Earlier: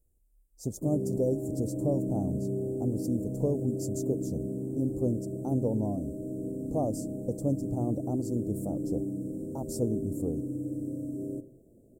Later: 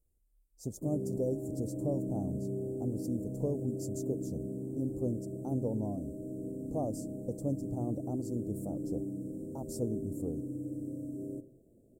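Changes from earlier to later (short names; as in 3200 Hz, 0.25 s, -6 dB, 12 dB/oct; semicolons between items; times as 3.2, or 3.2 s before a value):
speech -5.0 dB; background -4.5 dB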